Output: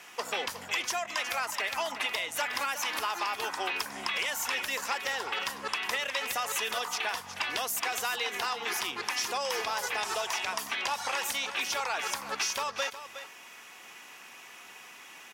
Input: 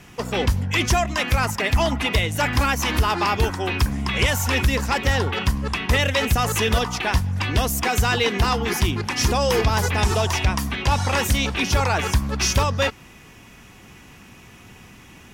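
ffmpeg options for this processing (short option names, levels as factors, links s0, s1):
-af "highpass=690,acompressor=threshold=0.0355:ratio=6,aecho=1:1:364:0.266"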